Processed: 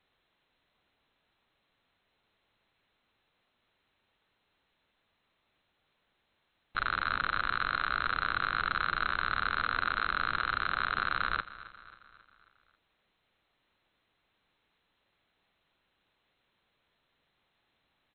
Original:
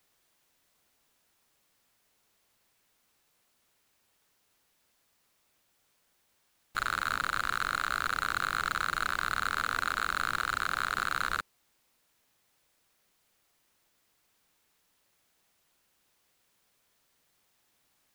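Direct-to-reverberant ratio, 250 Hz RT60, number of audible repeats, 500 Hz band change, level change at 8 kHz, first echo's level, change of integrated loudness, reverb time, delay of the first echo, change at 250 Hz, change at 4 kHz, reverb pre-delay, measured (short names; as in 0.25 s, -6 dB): none, none, 4, 0.0 dB, under -35 dB, -17.0 dB, 0.0 dB, none, 0.27 s, +0.5 dB, -1.0 dB, none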